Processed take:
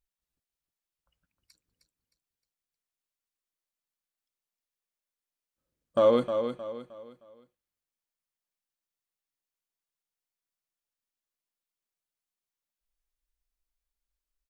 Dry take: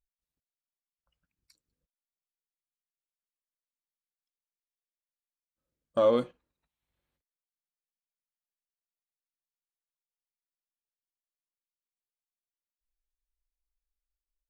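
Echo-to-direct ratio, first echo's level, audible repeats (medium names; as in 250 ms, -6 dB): -7.5 dB, -8.0 dB, 4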